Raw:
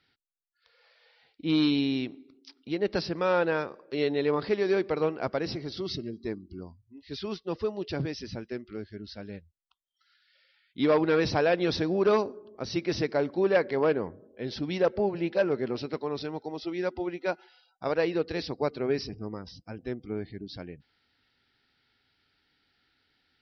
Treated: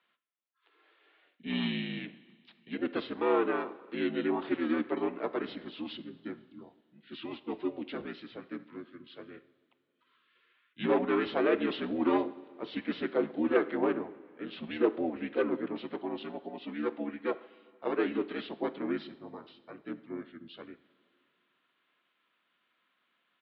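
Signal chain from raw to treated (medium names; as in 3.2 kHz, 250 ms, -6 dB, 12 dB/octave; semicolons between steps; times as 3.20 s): two-slope reverb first 0.6 s, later 2.8 s, from -14 dB, DRR 12 dB; harmony voices -4 st 0 dB; mistuned SSB -65 Hz 320–3500 Hz; trim -5.5 dB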